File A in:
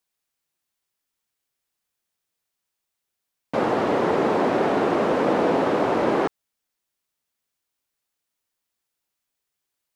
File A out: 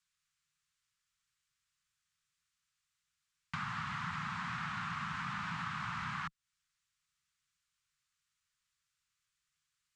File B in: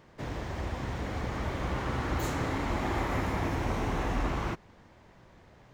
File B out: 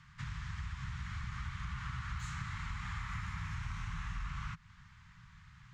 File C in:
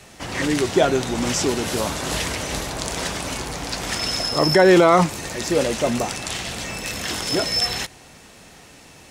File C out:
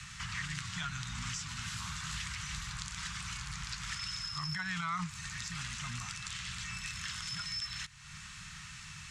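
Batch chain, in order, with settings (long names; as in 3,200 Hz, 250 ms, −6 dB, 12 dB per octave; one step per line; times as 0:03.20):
Chebyshev band-stop filter 160–1,200 Hz, order 3
parametric band 7,400 Hz +5 dB 0.49 octaves
downward compressor 3 to 1, threshold −42 dBFS
harmonic generator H 8 −40 dB, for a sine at −17.5 dBFS
high-frequency loss of the air 72 metres
level +2.5 dB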